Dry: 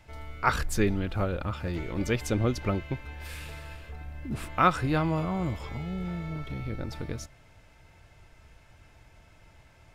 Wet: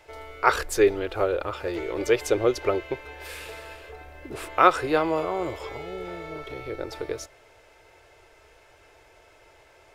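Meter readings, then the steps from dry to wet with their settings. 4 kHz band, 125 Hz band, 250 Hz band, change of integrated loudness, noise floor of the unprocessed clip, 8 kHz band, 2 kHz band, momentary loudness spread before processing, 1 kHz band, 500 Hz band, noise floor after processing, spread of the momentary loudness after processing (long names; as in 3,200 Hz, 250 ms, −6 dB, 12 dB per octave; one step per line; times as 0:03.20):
+4.0 dB, −10.0 dB, −1.0 dB, +4.5 dB, −57 dBFS, +4.0 dB, +4.5 dB, 15 LU, +5.0 dB, +9.5 dB, −56 dBFS, 19 LU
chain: low shelf with overshoot 290 Hz −11.5 dB, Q 3
level +4 dB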